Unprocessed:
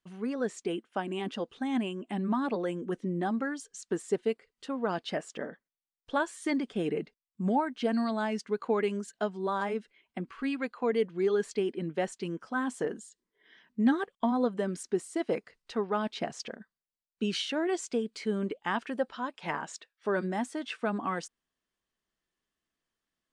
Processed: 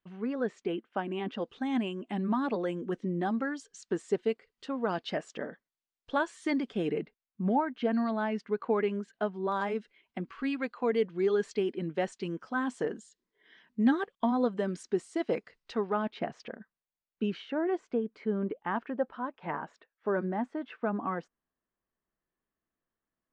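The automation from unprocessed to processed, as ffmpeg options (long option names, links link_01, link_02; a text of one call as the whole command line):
ffmpeg -i in.wav -af "asetnsamples=nb_out_samples=441:pad=0,asendcmd='1.42 lowpass f 5700;7.01 lowpass f 2700;9.52 lowpass f 5800;15.92 lowpass f 2400;17.3 lowpass f 1500',lowpass=3000" out.wav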